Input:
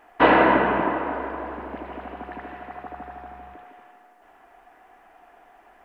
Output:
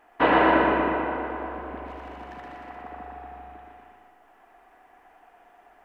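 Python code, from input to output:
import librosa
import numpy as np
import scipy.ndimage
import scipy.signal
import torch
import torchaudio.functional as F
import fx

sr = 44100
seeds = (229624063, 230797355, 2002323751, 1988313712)

y = fx.overload_stage(x, sr, gain_db=33.5, at=(1.86, 2.7))
y = fx.echo_feedback(y, sr, ms=120, feedback_pct=55, wet_db=-4)
y = y * librosa.db_to_amplitude(-4.5)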